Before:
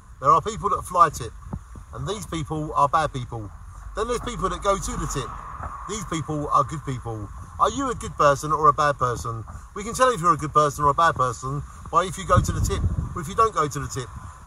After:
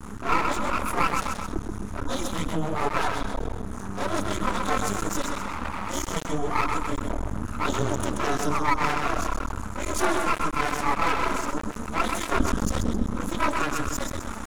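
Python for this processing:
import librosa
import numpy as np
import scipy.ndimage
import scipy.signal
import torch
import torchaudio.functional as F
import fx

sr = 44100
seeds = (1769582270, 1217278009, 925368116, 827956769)

y = x * np.sin(2.0 * np.pi * 150.0 * np.arange(len(x)) / sr)
y = fx.chorus_voices(y, sr, voices=4, hz=1.4, base_ms=27, depth_ms=3.0, mix_pct=70)
y = fx.echo_feedback(y, sr, ms=129, feedback_pct=39, wet_db=-7.5)
y = np.maximum(y, 0.0)
y = fx.vibrato(y, sr, rate_hz=0.45, depth_cents=29.0)
y = fx.env_flatten(y, sr, amount_pct=50)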